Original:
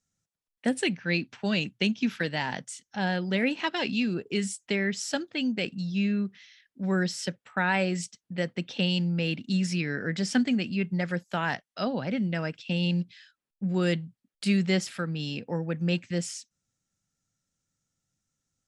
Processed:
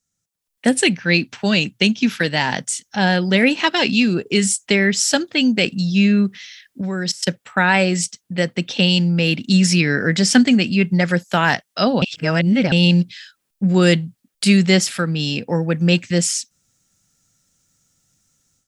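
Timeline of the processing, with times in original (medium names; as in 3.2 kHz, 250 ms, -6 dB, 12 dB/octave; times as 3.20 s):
6.81–7.27 s: level held to a coarse grid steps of 18 dB
12.02–12.72 s: reverse
whole clip: treble shelf 5.1 kHz +8.5 dB; level rider gain up to 14 dB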